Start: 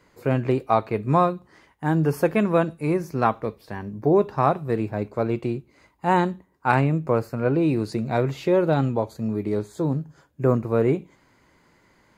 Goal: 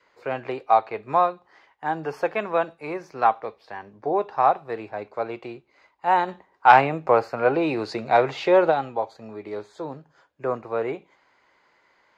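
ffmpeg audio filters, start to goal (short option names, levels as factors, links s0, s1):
-filter_complex "[0:a]acrossover=split=450 5600:gain=0.112 1 0.0631[s0][s1][s2];[s0][s1][s2]amix=inputs=3:normalize=0,asplit=3[s3][s4][s5];[s3]afade=t=out:st=6.27:d=0.02[s6];[s4]acontrast=89,afade=t=in:st=6.27:d=0.02,afade=t=out:st=8.7:d=0.02[s7];[s5]afade=t=in:st=8.7:d=0.02[s8];[s6][s7][s8]amix=inputs=3:normalize=0,adynamicequalizer=threshold=0.01:dfrequency=780:dqfactor=6:tfrequency=780:tqfactor=6:attack=5:release=100:ratio=0.375:range=4:mode=boostabove:tftype=bell"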